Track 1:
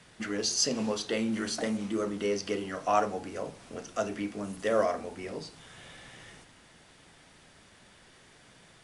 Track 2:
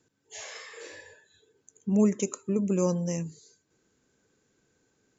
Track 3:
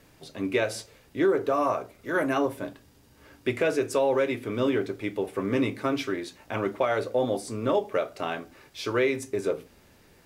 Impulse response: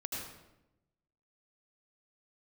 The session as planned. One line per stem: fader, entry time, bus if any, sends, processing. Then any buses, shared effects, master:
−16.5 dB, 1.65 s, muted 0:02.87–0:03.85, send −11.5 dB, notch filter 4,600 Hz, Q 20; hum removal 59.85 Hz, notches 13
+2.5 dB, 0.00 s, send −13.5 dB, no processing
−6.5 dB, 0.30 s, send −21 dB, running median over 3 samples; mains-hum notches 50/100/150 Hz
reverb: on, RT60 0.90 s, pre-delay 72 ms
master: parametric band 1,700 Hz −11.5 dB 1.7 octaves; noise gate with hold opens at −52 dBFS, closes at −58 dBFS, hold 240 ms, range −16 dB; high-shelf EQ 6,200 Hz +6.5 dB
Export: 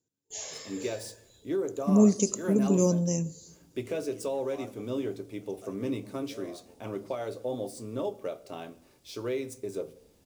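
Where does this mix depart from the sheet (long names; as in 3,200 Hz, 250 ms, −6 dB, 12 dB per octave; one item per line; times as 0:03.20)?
stem 1: send off
stem 2: send −13.5 dB → −22 dB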